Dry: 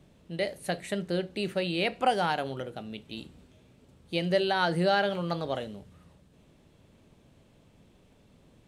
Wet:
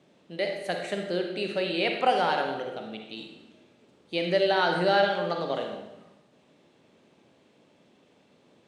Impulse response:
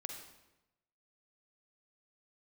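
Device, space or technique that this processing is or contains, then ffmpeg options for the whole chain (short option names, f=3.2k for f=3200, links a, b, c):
supermarket ceiling speaker: -filter_complex "[0:a]highpass=250,lowpass=6.6k[a];[1:a]atrim=start_sample=2205[b];[a][b]afir=irnorm=-1:irlink=0,volume=5dB"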